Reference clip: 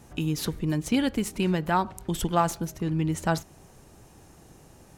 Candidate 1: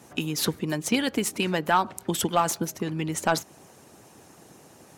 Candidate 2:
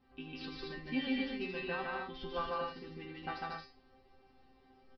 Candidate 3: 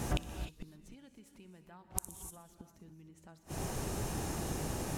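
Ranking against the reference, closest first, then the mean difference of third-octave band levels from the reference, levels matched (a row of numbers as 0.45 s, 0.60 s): 1, 2, 3; 3.5 dB, 10.0 dB, 16.5 dB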